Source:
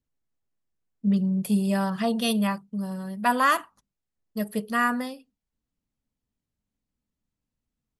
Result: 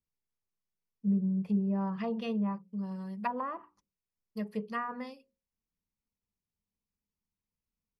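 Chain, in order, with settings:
EQ curve with evenly spaced ripples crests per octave 0.82, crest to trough 7 dB
treble cut that deepens with the level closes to 670 Hz, closed at −17.5 dBFS
mains-hum notches 60/120/180/240/300/360/420/480/540 Hz
level −8.5 dB

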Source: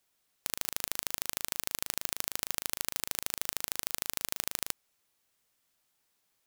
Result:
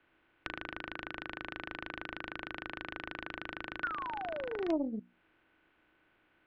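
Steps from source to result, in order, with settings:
spectral magnitudes quantised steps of 30 dB
hard clipping −8 dBFS, distortion −10 dB
single-sideband voice off tune −300 Hz 200–3,100 Hz
sound drawn into the spectrogram fall, 0:03.83–0:05.00, 200–1,500 Hz −40 dBFS
downward compressor 6 to 1, threshold −50 dBFS, peak gain reduction 12.5 dB
mains-hum notches 60/120/180/240/300/360/420/480 Hz
hollow resonant body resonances 320/1,500 Hz, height 13 dB, ringing for 55 ms
highs frequency-modulated by the lows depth 0.54 ms
level +12 dB

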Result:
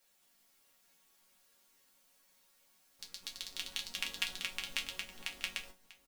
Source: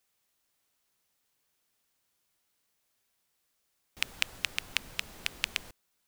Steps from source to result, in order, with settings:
background noise white −66 dBFS
on a send: single-tap delay 643 ms −17.5 dB
on the sum: delay with pitch and tempo change per echo 211 ms, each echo +3 semitones, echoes 3
resonators tuned to a chord F#3 major, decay 0.22 s
level +8.5 dB

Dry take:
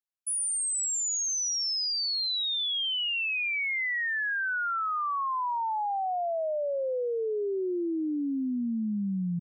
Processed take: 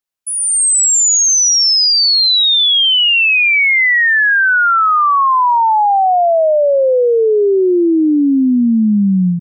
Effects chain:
automatic gain control gain up to 10 dB
level +8.5 dB

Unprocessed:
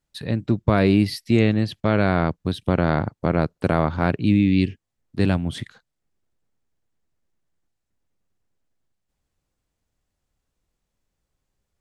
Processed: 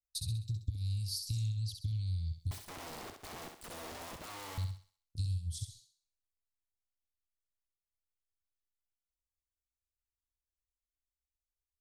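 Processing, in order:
inverse Chebyshev band-stop filter 270–1,800 Hz, stop band 60 dB
noise gate −56 dBFS, range −25 dB
downward compressor 8 to 1, threshold −40 dBFS, peak gain reduction 19 dB
0:02.51–0:04.58: wrap-around overflow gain 49 dB
feedback echo with a high-pass in the loop 65 ms, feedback 41%, high-pass 270 Hz, level −5 dB
level +6.5 dB

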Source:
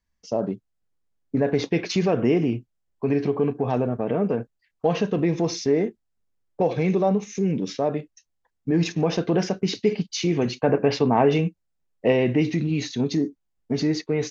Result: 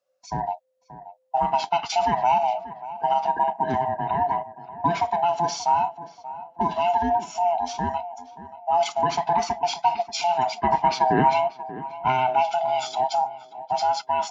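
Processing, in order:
neighbouring bands swapped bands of 500 Hz
high-pass filter 140 Hz 12 dB per octave
tape delay 583 ms, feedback 39%, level −13 dB, low-pass 1,400 Hz

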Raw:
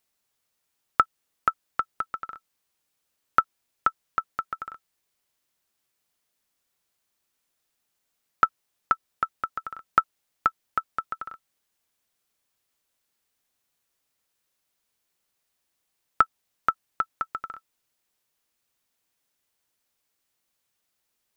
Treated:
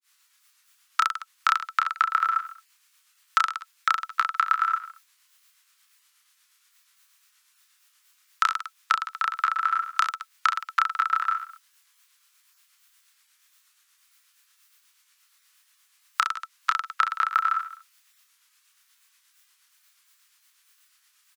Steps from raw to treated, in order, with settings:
downward compressor, threshold −31 dBFS, peak gain reduction 16.5 dB
Butterworth high-pass 1,100 Hz 36 dB per octave
reverse bouncing-ball delay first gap 30 ms, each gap 1.2×, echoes 5
granular cloud 225 ms, grains 8.4 per second, spray 16 ms, pitch spread up and down by 0 semitones
boost into a limiter +21.5 dB
level −6 dB

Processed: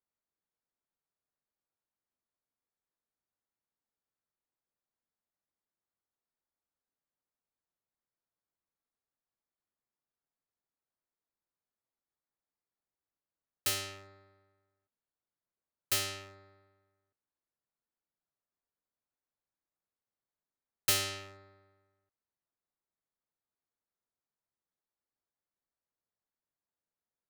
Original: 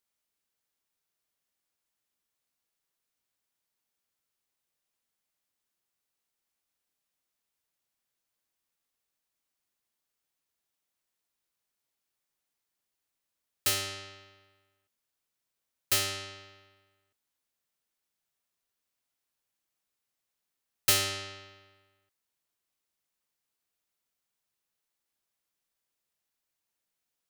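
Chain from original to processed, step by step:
adaptive Wiener filter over 15 samples
level −4 dB

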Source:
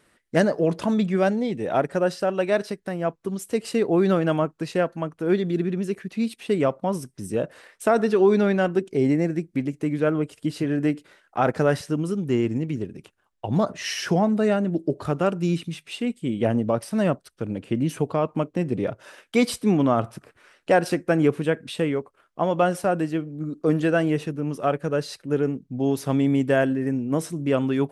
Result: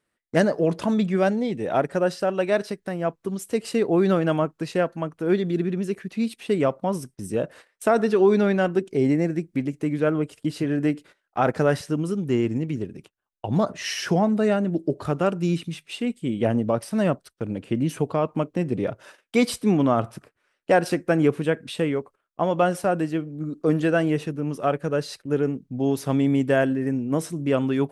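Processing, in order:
noise gate −44 dBFS, range −16 dB

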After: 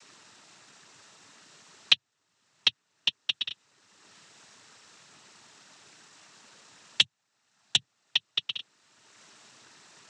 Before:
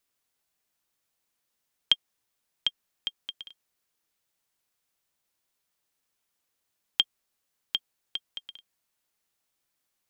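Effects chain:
0:07.00–0:07.76: lower of the sound and its delayed copy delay 1.2 ms
cochlear-implant simulation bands 12
multiband upward and downward compressor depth 70%
level +7 dB

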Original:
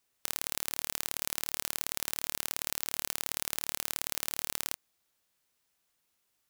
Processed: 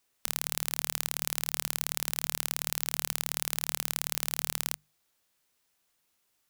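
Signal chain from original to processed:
mains-hum notches 50/100/150/200 Hz
level +2.5 dB

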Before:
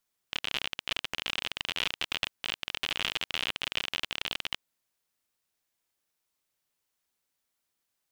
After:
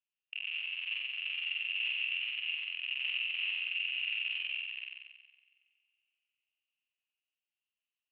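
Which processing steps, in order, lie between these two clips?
delay that plays each chunk backwards 231 ms, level −9 dB
leveller curve on the samples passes 2
in parallel at −2.5 dB: brickwall limiter −16.5 dBFS, peak gain reduction 7.5 dB
on the sum: soft clipping −18.5 dBFS, distortion −9 dB
resonant band-pass 3,100 Hz, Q 10
flutter between parallel walls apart 7.9 metres, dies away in 1.3 s
on a send at −22 dB: convolution reverb, pre-delay 3 ms
on the sum: formants moved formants −2 semitones
high-frequency loss of the air 210 metres

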